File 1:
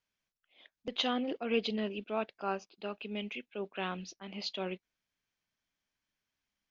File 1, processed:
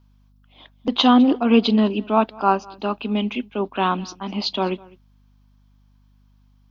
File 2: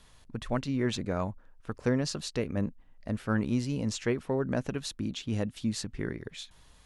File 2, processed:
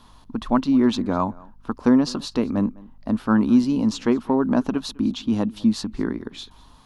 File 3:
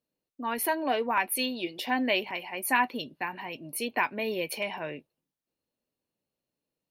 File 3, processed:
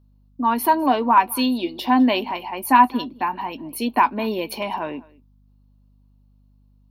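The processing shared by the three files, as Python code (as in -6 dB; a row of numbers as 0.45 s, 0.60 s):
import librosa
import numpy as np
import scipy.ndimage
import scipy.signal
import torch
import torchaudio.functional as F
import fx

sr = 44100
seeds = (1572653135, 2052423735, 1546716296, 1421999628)

y = fx.graphic_eq(x, sr, hz=(125, 250, 500, 1000, 2000, 4000, 8000), db=(-11, 11, -6, 11, -9, 3, -8))
y = y + 10.0 ** (-23.5 / 20.0) * np.pad(y, (int(204 * sr / 1000.0), 0))[:len(y)]
y = fx.add_hum(y, sr, base_hz=50, snr_db=34)
y = y * 10.0 ** (-22 / 20.0) / np.sqrt(np.mean(np.square(y)))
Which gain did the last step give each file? +13.5 dB, +6.5 dB, +6.0 dB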